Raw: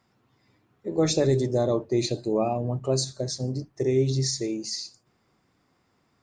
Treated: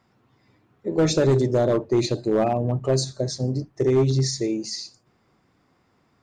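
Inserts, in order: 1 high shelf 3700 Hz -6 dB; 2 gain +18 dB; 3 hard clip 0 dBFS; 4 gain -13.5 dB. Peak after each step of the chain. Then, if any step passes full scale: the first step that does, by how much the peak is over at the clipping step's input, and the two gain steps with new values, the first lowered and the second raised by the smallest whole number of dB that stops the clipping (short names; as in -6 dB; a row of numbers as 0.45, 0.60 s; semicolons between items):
-12.0, +6.0, 0.0, -13.5 dBFS; step 2, 6.0 dB; step 2 +12 dB, step 4 -7.5 dB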